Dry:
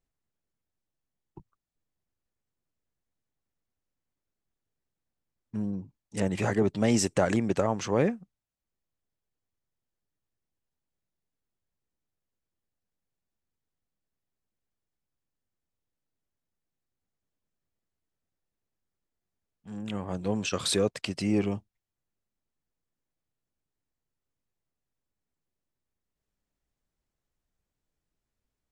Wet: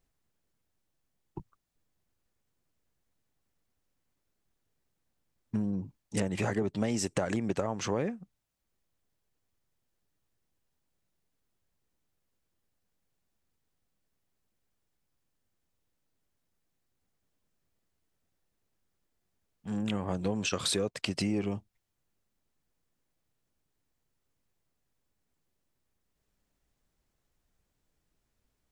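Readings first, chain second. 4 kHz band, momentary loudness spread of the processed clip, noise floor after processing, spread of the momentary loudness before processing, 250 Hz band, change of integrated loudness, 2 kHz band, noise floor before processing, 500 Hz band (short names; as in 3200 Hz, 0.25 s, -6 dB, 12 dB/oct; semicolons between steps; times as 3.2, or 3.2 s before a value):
-1.0 dB, 13 LU, -81 dBFS, 14 LU, -3.5 dB, -4.0 dB, -2.5 dB, under -85 dBFS, -5.0 dB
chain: compressor 6:1, threshold -34 dBFS, peak gain reduction 14.5 dB; gain +6.5 dB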